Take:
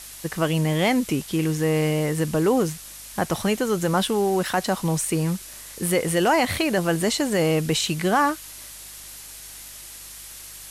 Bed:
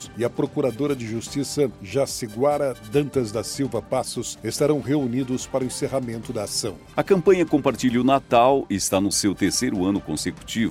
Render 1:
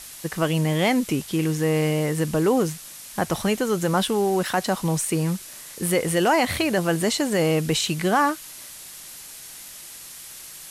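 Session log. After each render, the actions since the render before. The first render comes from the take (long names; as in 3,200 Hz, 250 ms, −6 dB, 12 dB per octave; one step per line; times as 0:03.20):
hum removal 50 Hz, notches 2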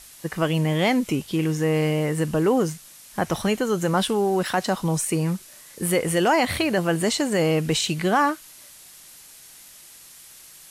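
noise reduction from a noise print 6 dB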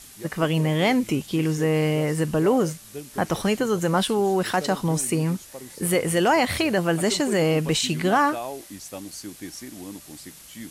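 mix in bed −16.5 dB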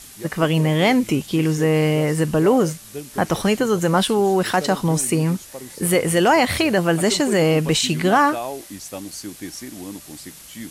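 level +4 dB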